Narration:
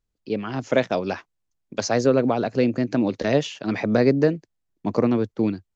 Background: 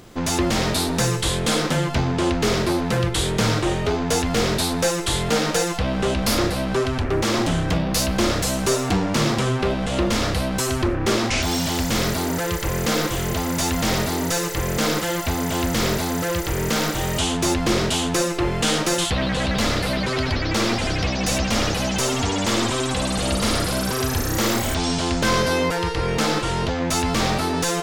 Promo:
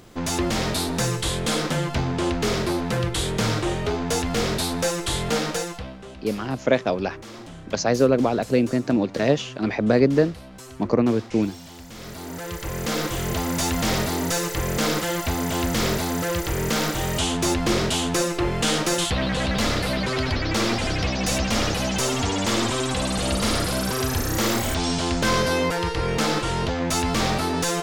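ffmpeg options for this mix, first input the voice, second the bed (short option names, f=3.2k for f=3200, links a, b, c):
-filter_complex "[0:a]adelay=5950,volume=0.5dB[a];[1:a]volume=14.5dB,afade=t=out:st=5.36:d=0.63:silence=0.158489,afade=t=in:st=11.96:d=1.42:silence=0.133352[b];[a][b]amix=inputs=2:normalize=0"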